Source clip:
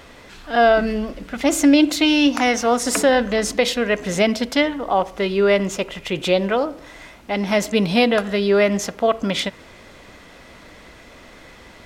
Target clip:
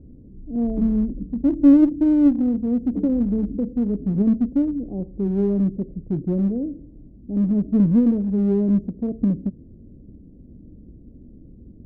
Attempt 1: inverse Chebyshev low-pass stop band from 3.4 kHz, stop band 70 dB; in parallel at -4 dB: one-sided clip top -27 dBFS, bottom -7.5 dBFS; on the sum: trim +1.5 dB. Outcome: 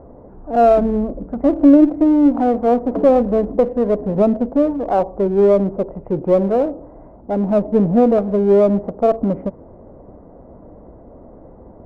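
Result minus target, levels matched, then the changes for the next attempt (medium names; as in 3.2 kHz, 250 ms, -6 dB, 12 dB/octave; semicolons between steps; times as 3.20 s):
1 kHz band +19.5 dB
change: inverse Chebyshev low-pass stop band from 1.3 kHz, stop band 70 dB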